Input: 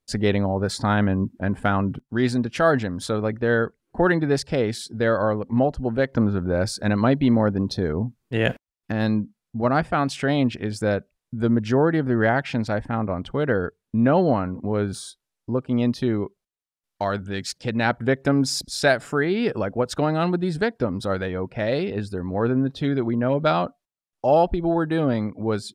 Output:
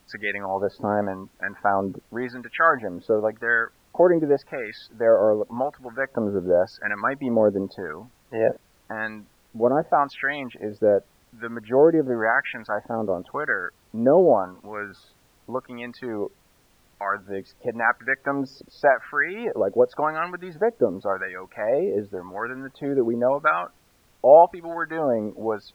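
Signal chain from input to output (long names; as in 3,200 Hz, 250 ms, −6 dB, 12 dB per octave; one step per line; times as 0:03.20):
LFO wah 0.9 Hz 440–1,800 Hz, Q 2.2
spectral peaks only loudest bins 64
background noise pink −67 dBFS
level +7 dB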